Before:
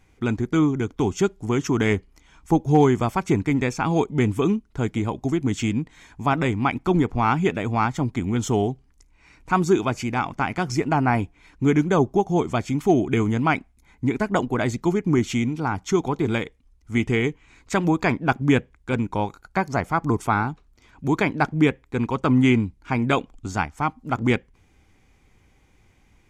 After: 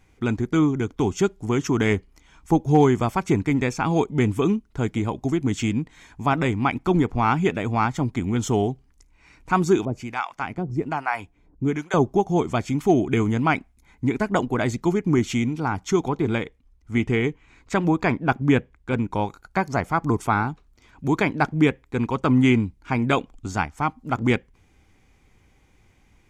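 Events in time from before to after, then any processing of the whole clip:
0:09.85–0:11.94: two-band tremolo in antiphase 1.2 Hz, depth 100%, crossover 660 Hz
0:16.09–0:19.11: high-shelf EQ 4,400 Hz −7 dB

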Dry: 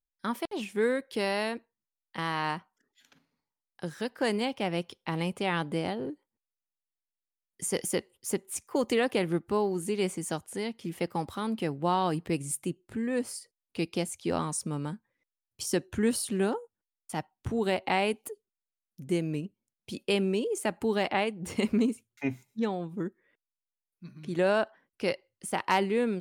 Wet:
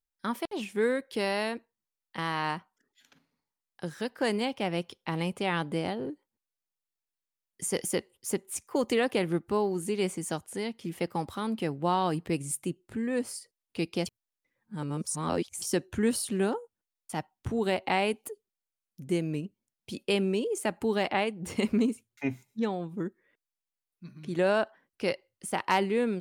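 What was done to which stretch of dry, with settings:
0:14.06–0:15.62: reverse

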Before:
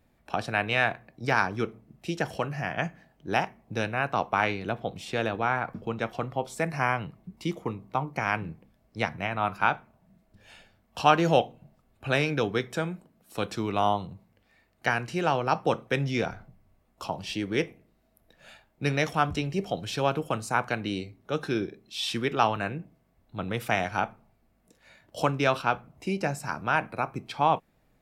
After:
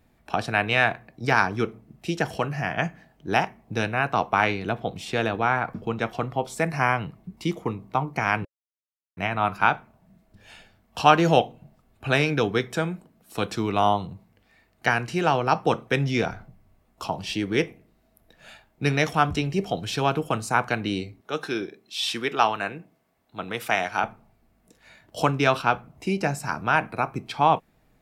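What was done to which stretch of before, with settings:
0:08.45–0:09.17: silence
0:21.21–0:24.04: high-pass filter 440 Hz 6 dB per octave
whole clip: notch filter 550 Hz, Q 12; level +4 dB

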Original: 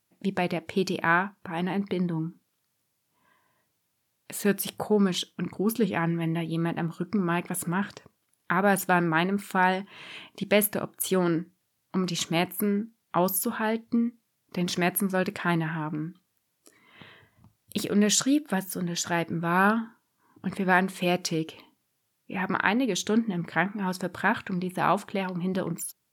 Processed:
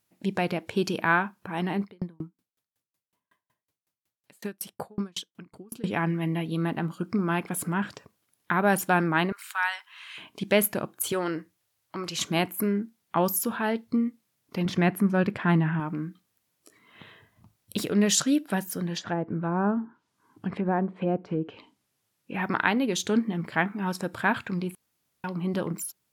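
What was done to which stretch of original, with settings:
0:01.83–0:05.84: tremolo with a ramp in dB decaying 5.4 Hz, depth 39 dB
0:09.32–0:10.18: high-pass filter 1,100 Hz 24 dB per octave
0:11.12–0:12.18: parametric band 210 Hz −15 dB 0.86 octaves
0:14.65–0:15.80: bass and treble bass +7 dB, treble −12 dB
0:18.96–0:22.34: treble cut that deepens with the level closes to 710 Hz, closed at −23 dBFS
0:24.75–0:25.24: fill with room tone

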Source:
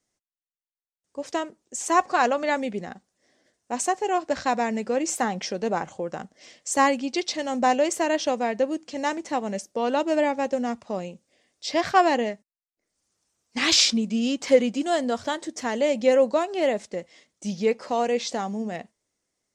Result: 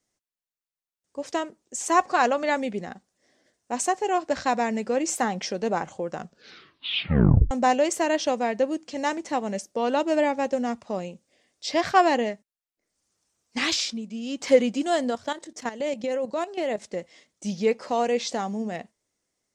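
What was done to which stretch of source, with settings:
0:06.15: tape stop 1.36 s
0:13.58–0:14.46: duck −9 dB, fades 0.20 s
0:15.10–0:16.82: output level in coarse steps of 13 dB

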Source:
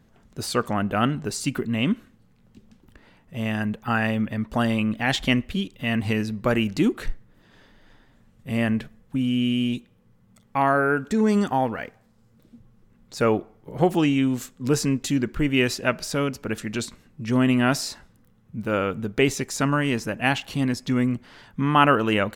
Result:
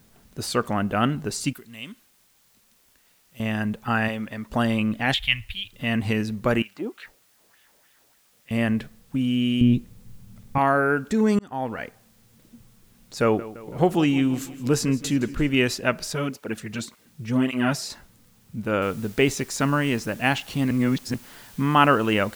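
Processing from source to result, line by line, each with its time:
0:01.53–0:03.40: first-order pre-emphasis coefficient 0.9
0:04.08–0:04.50: low-shelf EQ 290 Hz −10.5 dB
0:05.14–0:05.73: drawn EQ curve 110 Hz 0 dB, 160 Hz −23 dB, 390 Hz −29 dB, 550 Hz −26 dB, 800 Hz −14 dB, 1,200 Hz −12 dB, 2,500 Hz +5 dB, 3,600 Hz +3 dB, 6,000 Hz −16 dB, 12,000 Hz −1 dB
0:06.62–0:08.51: LFO wah 3.3 Hz 520–3,000 Hz, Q 2.2
0:09.61–0:10.58: RIAA equalisation playback
0:11.39–0:11.82: fade in
0:13.22–0:15.55: repeating echo 166 ms, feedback 57%, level −17 dB
0:16.13–0:17.90: through-zero flanger with one copy inverted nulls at 1.8 Hz, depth 4.1 ms
0:18.82: noise floor change −62 dB −49 dB
0:20.71–0:21.14: reverse

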